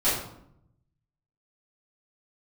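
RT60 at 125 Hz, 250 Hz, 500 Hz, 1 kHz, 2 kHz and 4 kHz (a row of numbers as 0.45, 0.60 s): 1.4, 1.0, 0.75, 0.70, 0.55, 0.45 s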